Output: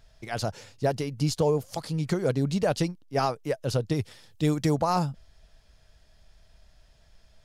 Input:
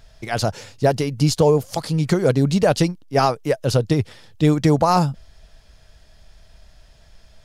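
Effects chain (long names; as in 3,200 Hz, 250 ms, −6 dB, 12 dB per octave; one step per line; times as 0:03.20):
0:03.94–0:04.74: high-shelf EQ 3,900 Hz → 6,500 Hz +8.5 dB
level −8.5 dB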